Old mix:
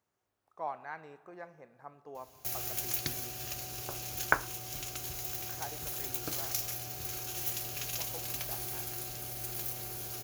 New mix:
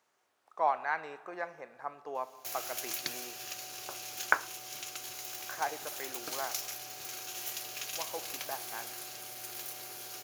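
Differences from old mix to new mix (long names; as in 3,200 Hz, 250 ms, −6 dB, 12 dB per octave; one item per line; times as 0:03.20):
speech +10.0 dB
master: add meter weighting curve A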